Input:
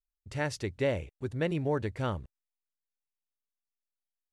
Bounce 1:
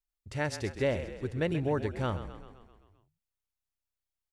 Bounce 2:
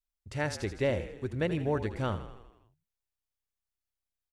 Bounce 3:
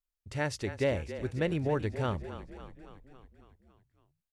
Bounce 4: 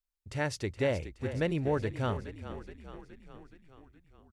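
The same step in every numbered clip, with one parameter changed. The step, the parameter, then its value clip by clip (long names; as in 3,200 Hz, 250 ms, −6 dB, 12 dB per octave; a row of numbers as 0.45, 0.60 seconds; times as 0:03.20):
echo with shifted repeats, delay time: 130, 81, 277, 421 milliseconds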